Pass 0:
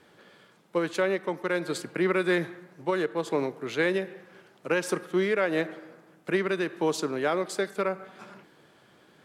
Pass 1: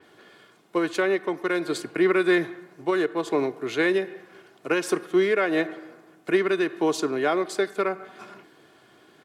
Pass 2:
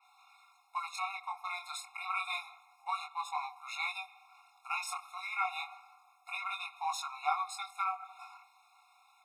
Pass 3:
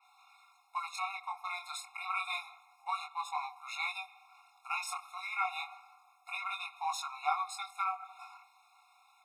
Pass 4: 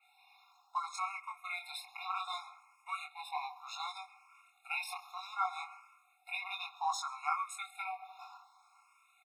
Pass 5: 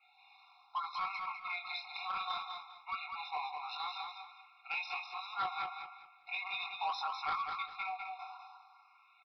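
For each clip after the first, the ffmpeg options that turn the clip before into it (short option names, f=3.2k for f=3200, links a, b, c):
-af "highpass=83,aecho=1:1:2.8:0.44,adynamicequalizer=threshold=0.00562:dfrequency=4900:dqfactor=0.7:tfrequency=4900:tqfactor=0.7:attack=5:release=100:ratio=0.375:range=2:mode=cutabove:tftype=highshelf,volume=2.5dB"
-af "flanger=delay=20:depth=7:speed=0.28,afftfilt=real='re*eq(mod(floor(b*sr/1024/710),2),1)':imag='im*eq(mod(floor(b*sr/1024/710),2),1)':win_size=1024:overlap=0.75"
-af anull
-filter_complex "[0:a]aecho=1:1:134:0.0708,asplit=2[a][b];[b]afreqshift=0.65[c];[a][c]amix=inputs=2:normalize=1,volume=1.5dB"
-af "aresample=11025,asoftclip=type=tanh:threshold=-31.5dB,aresample=44100,aecho=1:1:201|402|603|804:0.562|0.152|0.041|0.0111,volume=1.5dB"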